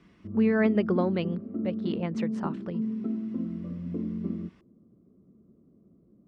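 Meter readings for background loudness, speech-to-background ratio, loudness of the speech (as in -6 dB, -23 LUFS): -33.5 LUFS, 3.5 dB, -30.0 LUFS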